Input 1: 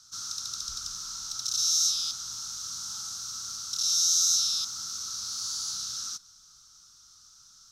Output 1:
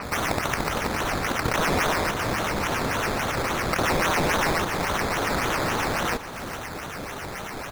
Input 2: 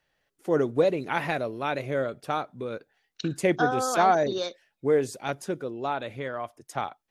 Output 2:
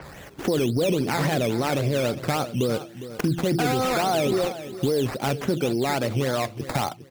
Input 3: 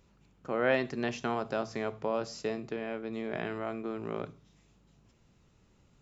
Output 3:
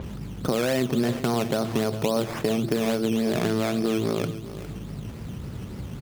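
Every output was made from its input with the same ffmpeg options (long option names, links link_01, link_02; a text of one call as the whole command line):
ffmpeg -i in.wav -filter_complex "[0:a]highpass=64,lowshelf=frequency=370:gain=11.5,bandreject=frequency=168.9:width_type=h:width=4,bandreject=frequency=337.8:width_type=h:width=4,asplit=2[link_01][link_02];[link_02]acompressor=mode=upward:threshold=-28dB:ratio=2.5,volume=0.5dB[link_03];[link_01][link_03]amix=inputs=2:normalize=0,alimiter=limit=-13dB:level=0:latency=1:release=12,acompressor=threshold=-27dB:ratio=3,acrusher=samples=12:mix=1:aa=0.000001:lfo=1:lforange=7.2:lforate=3.6,aecho=1:1:407|814|1221:0.211|0.0465|0.0102,adynamicequalizer=threshold=0.00501:dfrequency=6500:dqfactor=0.7:tfrequency=6500:tqfactor=0.7:attack=5:release=100:ratio=0.375:range=2:mode=cutabove:tftype=highshelf,volume=5dB" out.wav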